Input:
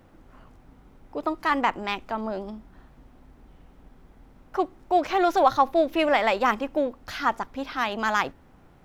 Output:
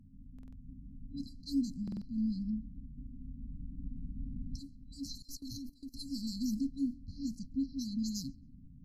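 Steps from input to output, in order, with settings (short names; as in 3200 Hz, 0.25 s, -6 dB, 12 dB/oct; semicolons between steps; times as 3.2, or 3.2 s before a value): recorder AGC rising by 5.1 dB/s; low-pass opened by the level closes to 440 Hz, open at -19.5 dBFS; FFT band-reject 290–4000 Hz; 5.22–5.94 level quantiser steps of 21 dB; on a send: tape echo 0.136 s, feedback 43%, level -22.5 dB, low-pass 1700 Hz; on the sum: stuck buffer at 0.34/1.83, samples 2048, times 3; MP3 56 kbps 48000 Hz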